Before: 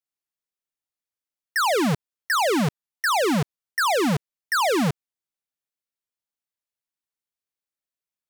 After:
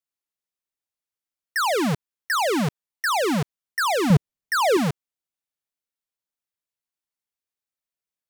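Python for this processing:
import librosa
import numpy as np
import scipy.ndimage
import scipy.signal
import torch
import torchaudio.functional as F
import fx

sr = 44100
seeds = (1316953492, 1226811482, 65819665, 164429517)

y = fx.low_shelf(x, sr, hz=400.0, db=11.0, at=(4.1, 4.77))
y = y * librosa.db_to_amplitude(-1.0)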